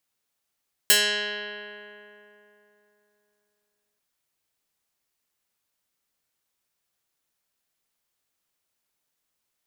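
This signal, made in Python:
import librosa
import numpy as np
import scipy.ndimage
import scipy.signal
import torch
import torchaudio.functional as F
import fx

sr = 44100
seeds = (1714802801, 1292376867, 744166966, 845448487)

y = fx.pluck(sr, length_s=3.09, note=56, decay_s=3.3, pick=0.17, brightness='medium')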